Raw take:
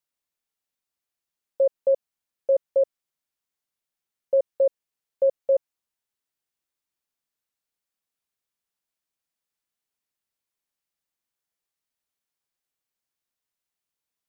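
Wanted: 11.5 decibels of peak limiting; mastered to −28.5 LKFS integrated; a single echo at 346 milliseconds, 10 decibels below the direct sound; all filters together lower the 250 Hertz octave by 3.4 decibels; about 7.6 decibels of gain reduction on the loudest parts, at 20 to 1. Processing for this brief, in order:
parametric band 250 Hz −5 dB
downward compressor 20 to 1, threshold −24 dBFS
brickwall limiter −28 dBFS
single-tap delay 346 ms −10 dB
level +11 dB

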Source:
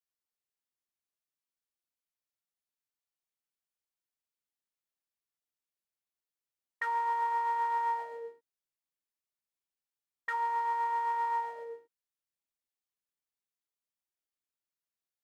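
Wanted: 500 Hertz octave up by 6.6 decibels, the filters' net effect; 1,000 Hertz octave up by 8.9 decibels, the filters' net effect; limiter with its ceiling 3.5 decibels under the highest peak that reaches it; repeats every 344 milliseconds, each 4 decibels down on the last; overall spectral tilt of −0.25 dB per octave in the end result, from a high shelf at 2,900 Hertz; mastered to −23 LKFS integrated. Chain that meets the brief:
parametric band 500 Hz +5.5 dB
parametric band 1,000 Hz +7.5 dB
high-shelf EQ 2,900 Hz +5.5 dB
brickwall limiter −18.5 dBFS
repeating echo 344 ms, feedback 63%, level −4 dB
level +4 dB

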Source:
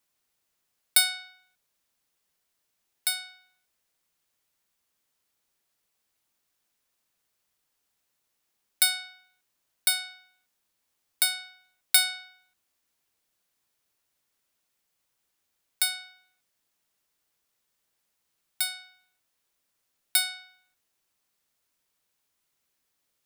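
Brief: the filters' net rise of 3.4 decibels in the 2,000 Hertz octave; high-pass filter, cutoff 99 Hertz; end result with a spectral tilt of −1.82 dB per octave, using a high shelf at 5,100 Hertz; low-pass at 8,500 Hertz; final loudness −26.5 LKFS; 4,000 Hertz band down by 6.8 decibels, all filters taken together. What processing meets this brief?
high-pass filter 99 Hz
low-pass filter 8,500 Hz
parametric band 2,000 Hz +7 dB
parametric band 4,000 Hz −7.5 dB
high-shelf EQ 5,100 Hz −4 dB
level +4 dB

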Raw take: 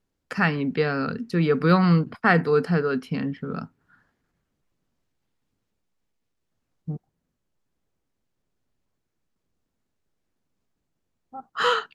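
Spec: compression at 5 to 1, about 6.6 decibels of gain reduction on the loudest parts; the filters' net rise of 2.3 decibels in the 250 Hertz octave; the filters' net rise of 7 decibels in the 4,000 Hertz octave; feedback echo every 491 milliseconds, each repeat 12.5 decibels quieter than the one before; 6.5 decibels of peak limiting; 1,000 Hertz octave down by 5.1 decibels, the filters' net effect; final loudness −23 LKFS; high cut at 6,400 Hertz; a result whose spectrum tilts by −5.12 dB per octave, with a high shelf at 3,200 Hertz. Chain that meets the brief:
low-pass filter 6,400 Hz
parametric band 250 Hz +4 dB
parametric band 1,000 Hz −9 dB
high-shelf EQ 3,200 Hz +3.5 dB
parametric band 4,000 Hz +8 dB
downward compressor 5 to 1, threshold −20 dBFS
brickwall limiter −17.5 dBFS
repeating echo 491 ms, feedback 24%, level −12.5 dB
level +5 dB

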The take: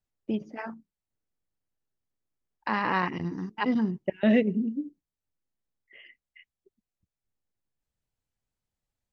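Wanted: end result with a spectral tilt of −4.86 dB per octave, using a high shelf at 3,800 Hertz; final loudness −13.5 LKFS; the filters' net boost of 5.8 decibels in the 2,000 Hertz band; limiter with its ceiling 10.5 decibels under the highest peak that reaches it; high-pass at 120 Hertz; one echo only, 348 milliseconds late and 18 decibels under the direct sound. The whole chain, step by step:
high-pass filter 120 Hz
parametric band 2,000 Hz +5.5 dB
high-shelf EQ 3,800 Hz +6 dB
brickwall limiter −19 dBFS
single-tap delay 348 ms −18 dB
level +18 dB

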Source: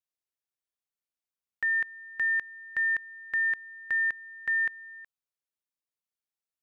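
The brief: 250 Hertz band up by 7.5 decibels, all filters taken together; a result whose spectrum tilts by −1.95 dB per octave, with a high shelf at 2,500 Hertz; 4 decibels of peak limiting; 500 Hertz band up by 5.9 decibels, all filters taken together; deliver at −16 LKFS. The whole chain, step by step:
parametric band 250 Hz +8 dB
parametric band 500 Hz +5 dB
high-shelf EQ 2,500 Hz +6 dB
level +13 dB
brickwall limiter −10.5 dBFS

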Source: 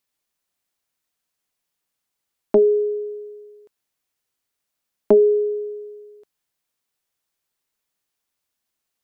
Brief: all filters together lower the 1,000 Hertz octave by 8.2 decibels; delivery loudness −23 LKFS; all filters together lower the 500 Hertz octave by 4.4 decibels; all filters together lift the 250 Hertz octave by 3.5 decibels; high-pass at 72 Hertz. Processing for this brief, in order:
high-pass filter 72 Hz
parametric band 250 Hz +7 dB
parametric band 500 Hz −7 dB
parametric band 1,000 Hz −8.5 dB
level −0.5 dB

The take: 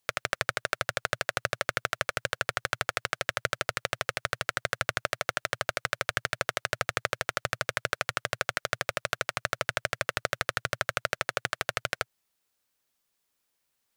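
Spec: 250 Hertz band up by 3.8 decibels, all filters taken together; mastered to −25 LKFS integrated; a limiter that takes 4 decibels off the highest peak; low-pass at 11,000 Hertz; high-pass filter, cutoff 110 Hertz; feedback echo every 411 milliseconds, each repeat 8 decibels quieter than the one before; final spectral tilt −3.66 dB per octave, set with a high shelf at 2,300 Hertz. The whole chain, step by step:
high-pass filter 110 Hz
low-pass filter 11,000 Hz
parametric band 250 Hz +8 dB
high-shelf EQ 2,300 Hz −9 dB
brickwall limiter −13 dBFS
repeating echo 411 ms, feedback 40%, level −8 dB
level +10.5 dB

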